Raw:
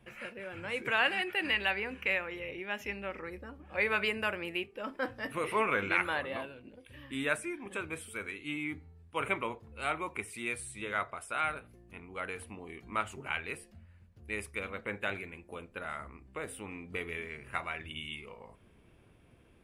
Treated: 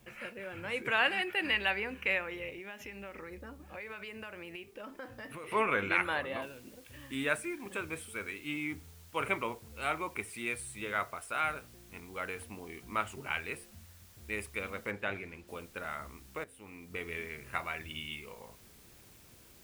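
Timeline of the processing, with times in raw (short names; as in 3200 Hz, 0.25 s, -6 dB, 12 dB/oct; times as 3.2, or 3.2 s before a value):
2.49–5.52 compressor, threshold -41 dBFS
6.42 noise floor step -70 dB -60 dB
14.91–15.48 LPF 3100 Hz 6 dB/oct
16.44–17.19 fade in, from -15.5 dB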